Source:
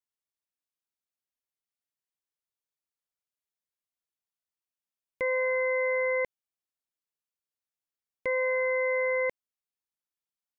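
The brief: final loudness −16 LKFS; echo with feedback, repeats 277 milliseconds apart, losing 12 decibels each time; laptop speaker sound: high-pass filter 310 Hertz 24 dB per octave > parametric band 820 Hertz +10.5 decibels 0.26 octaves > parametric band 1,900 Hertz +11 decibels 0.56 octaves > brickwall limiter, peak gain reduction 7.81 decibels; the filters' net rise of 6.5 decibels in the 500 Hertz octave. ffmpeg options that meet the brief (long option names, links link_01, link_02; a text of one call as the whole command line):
ffmpeg -i in.wav -af "highpass=frequency=310:width=0.5412,highpass=frequency=310:width=1.3066,equalizer=frequency=500:width_type=o:gain=6,equalizer=frequency=820:width_type=o:width=0.26:gain=10.5,equalizer=frequency=1900:width_type=o:width=0.56:gain=11,aecho=1:1:277|554|831:0.251|0.0628|0.0157,volume=12.5dB,alimiter=limit=-9dB:level=0:latency=1" out.wav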